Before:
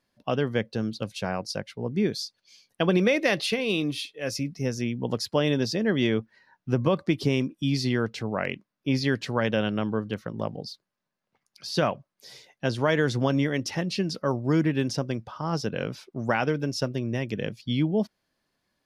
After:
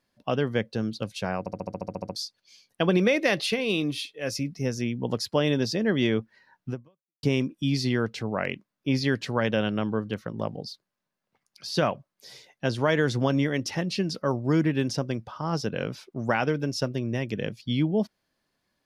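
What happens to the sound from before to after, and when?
0:01.39: stutter in place 0.07 s, 11 plays
0:06.69–0:07.23: fade out exponential

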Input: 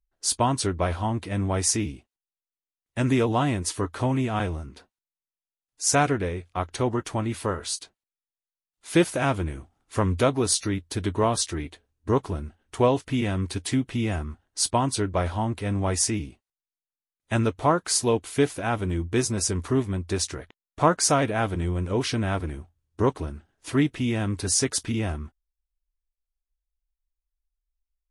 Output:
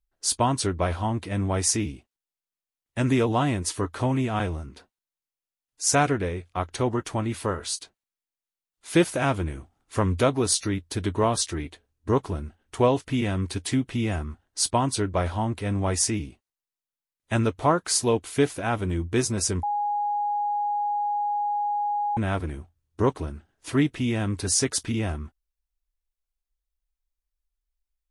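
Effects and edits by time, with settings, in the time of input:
0:19.63–0:22.17: beep over 826 Hz −23 dBFS

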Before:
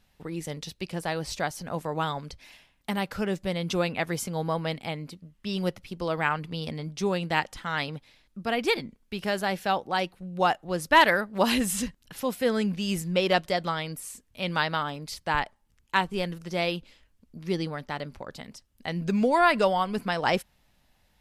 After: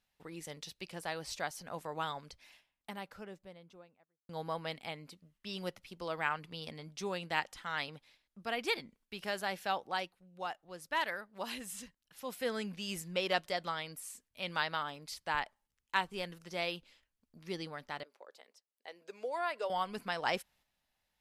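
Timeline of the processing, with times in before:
0:02.09–0:04.29: fade out and dull
0:09.94–0:12.37: duck −8 dB, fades 0.22 s
0:18.03–0:19.70: four-pole ladder high-pass 370 Hz, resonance 45%
whole clip: noise gate −56 dBFS, range −6 dB; low-shelf EQ 390 Hz −10 dB; level −6.5 dB

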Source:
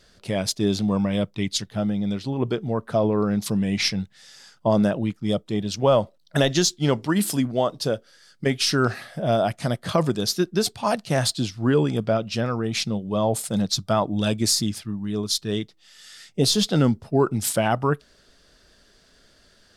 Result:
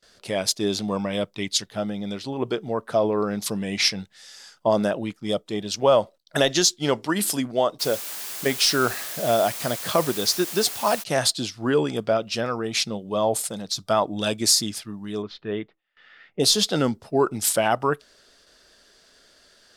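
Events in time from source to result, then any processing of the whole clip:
0:07.79–0:11.02: background noise white −37 dBFS
0:13.36–0:13.86: downward compressor 5 to 1, threshold −25 dBFS
0:15.22–0:16.40: low-pass filter 2,400 Hz 24 dB per octave
whole clip: bass and treble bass −11 dB, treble +2 dB; noise gate with hold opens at −48 dBFS; level +1.5 dB

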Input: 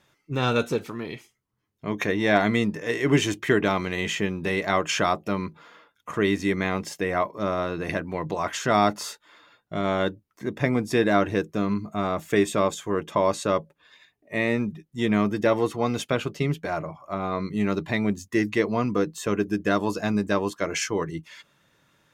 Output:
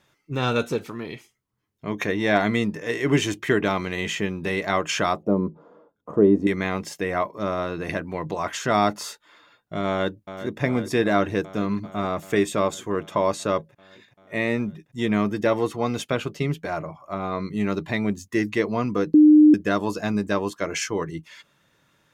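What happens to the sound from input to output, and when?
0:05.23–0:06.47: drawn EQ curve 110 Hz 0 dB, 180 Hz +6 dB, 520 Hz +8 dB, 1,100 Hz −5 dB, 2,100 Hz −23 dB
0:09.88–0:10.62: delay throw 390 ms, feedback 80%, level −11.5 dB
0:19.14–0:19.54: beep over 303 Hz −8.5 dBFS

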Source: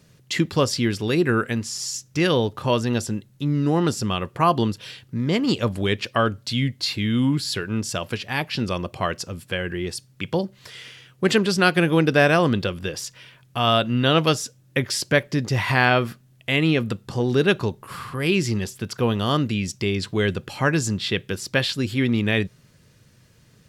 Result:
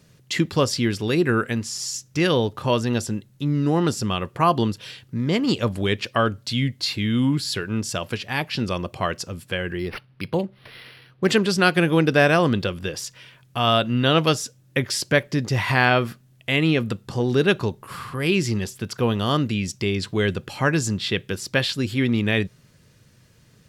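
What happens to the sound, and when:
0:09.79–0:11.27: linearly interpolated sample-rate reduction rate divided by 6×

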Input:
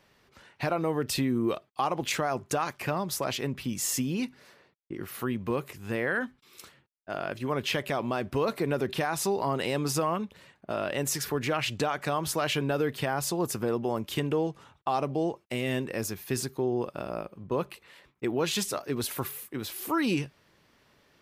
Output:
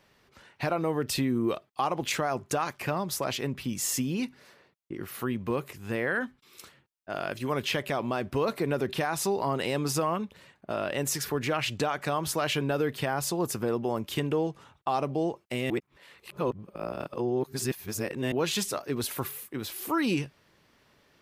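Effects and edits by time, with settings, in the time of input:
0:07.15–0:07.65: high-shelf EQ 3,500 Hz +7 dB
0:15.70–0:18.32: reverse

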